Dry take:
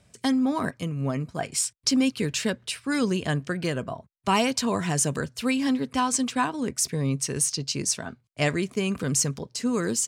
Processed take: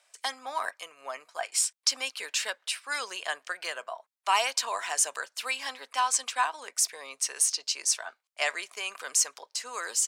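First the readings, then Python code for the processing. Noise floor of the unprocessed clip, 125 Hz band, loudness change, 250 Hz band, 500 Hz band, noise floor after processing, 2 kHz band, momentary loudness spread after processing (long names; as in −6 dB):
−63 dBFS, below −40 dB, −3.0 dB, −33.5 dB, −10.0 dB, −78 dBFS, 0.0 dB, 11 LU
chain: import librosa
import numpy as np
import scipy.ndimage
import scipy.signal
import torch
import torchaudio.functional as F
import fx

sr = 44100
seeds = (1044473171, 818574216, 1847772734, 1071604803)

y = scipy.signal.sosfilt(scipy.signal.butter(4, 710.0, 'highpass', fs=sr, output='sos'), x)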